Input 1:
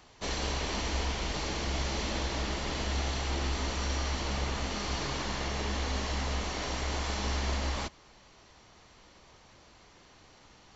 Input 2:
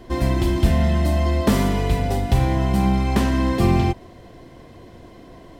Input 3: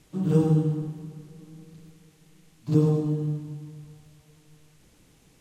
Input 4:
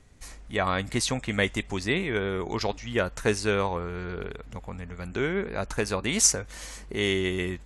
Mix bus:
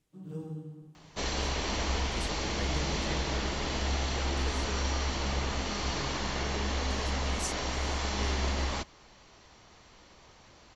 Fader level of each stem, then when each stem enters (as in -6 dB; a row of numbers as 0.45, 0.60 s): +1.0 dB, off, -19.0 dB, -17.5 dB; 0.95 s, off, 0.00 s, 1.20 s